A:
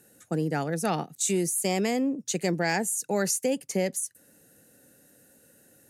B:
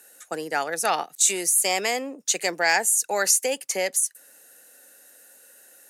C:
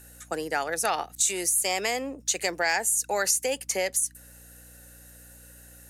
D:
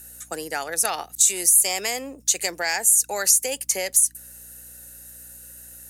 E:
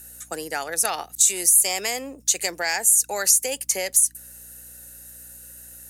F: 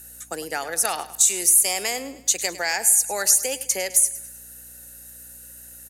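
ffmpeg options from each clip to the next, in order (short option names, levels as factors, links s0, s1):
-af "highpass=750,volume=2.66"
-af "aeval=exprs='val(0)+0.00251*(sin(2*PI*60*n/s)+sin(2*PI*2*60*n/s)/2+sin(2*PI*3*60*n/s)/3+sin(2*PI*4*60*n/s)/4+sin(2*PI*5*60*n/s)/5)':c=same,acompressor=threshold=0.0631:ratio=2"
-af "crystalizer=i=2:c=0,volume=0.841"
-af anull
-af "aecho=1:1:104|208|312|416:0.168|0.0755|0.034|0.0153"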